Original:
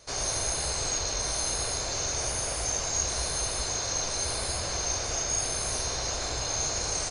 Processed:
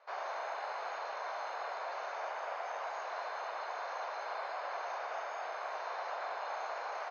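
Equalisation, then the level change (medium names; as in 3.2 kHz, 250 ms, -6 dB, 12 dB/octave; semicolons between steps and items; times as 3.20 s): high-pass 700 Hz 24 dB/octave; low-pass 1.4 kHz 12 dB/octave; distance through air 150 m; +3.0 dB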